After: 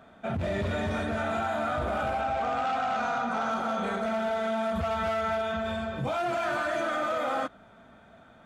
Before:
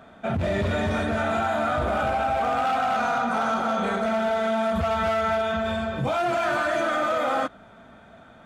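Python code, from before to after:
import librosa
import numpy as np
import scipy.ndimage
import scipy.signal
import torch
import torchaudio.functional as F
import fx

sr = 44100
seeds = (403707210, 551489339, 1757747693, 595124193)

y = fx.lowpass(x, sr, hz=8000.0, slope=24, at=(2.21, 3.51))
y = F.gain(torch.from_numpy(y), -5.0).numpy()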